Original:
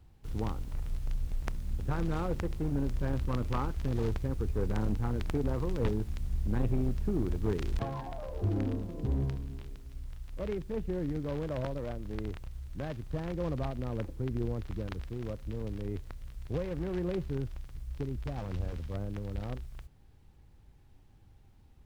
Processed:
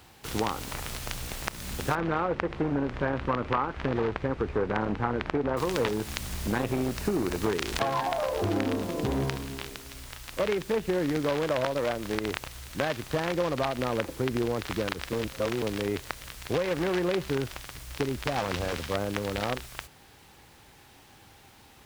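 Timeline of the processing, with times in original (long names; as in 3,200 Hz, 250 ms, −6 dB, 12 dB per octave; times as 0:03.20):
0:01.95–0:05.57: low-pass filter 2,000 Hz
0:06.96–0:07.41: notch filter 3,300 Hz, Q 11
0:15.13–0:15.62: reverse
whole clip: high-pass filter 1,100 Hz 6 dB per octave; downward compressor, threshold −45 dBFS; boost into a limiter +29 dB; level −7.5 dB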